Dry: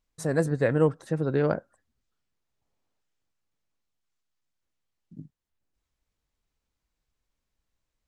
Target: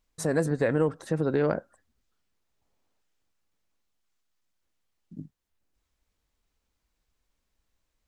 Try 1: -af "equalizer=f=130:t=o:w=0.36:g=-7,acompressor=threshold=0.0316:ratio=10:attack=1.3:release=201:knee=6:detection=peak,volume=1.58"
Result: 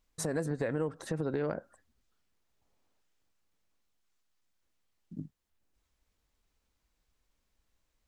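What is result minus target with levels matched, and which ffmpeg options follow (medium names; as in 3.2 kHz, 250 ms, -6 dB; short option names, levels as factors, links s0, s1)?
compression: peak gain reduction +8.5 dB
-af "equalizer=f=130:t=o:w=0.36:g=-7,acompressor=threshold=0.0944:ratio=10:attack=1.3:release=201:knee=6:detection=peak,volume=1.58"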